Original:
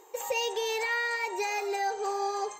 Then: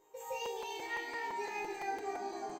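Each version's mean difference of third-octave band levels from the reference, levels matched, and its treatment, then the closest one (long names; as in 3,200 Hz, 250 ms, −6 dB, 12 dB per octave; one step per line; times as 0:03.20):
7.0 dB: low-shelf EQ 320 Hz +9.5 dB
resonators tuned to a chord G#2 major, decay 0.7 s
on a send: echo with shifted repeats 272 ms, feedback 50%, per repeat −65 Hz, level −7.5 dB
on the sum: regular buffer underruns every 0.17 s, samples 256, repeat, from 0:00.45
level +4.5 dB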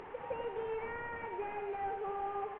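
15.0 dB: linear delta modulator 16 kbit/s, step −36.5 dBFS
low-pass filter 1,800 Hz 12 dB per octave
single-tap delay 94 ms −7.5 dB
upward compression, threshold −39 dBFS
level −7.5 dB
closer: first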